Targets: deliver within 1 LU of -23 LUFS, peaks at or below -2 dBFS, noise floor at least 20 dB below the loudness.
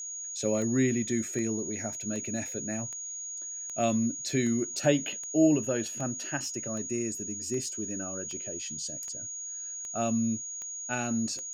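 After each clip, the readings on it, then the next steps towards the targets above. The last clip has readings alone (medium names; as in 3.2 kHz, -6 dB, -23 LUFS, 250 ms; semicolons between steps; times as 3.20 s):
clicks found 15; steady tone 6.7 kHz; tone level -36 dBFS; loudness -30.5 LUFS; peak level -9.0 dBFS; loudness target -23.0 LUFS
-> de-click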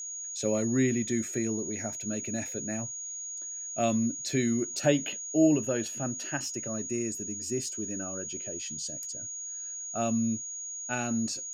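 clicks found 0; steady tone 6.7 kHz; tone level -36 dBFS
-> band-stop 6.7 kHz, Q 30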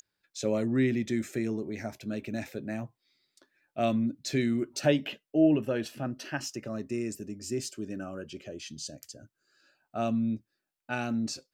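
steady tone not found; loudness -31.5 LUFS; peak level -9.5 dBFS; loudness target -23.0 LUFS
-> trim +8.5 dB; peak limiter -2 dBFS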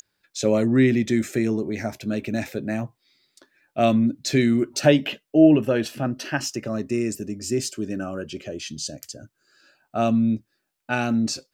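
loudness -23.0 LUFS; peak level -2.0 dBFS; noise floor -77 dBFS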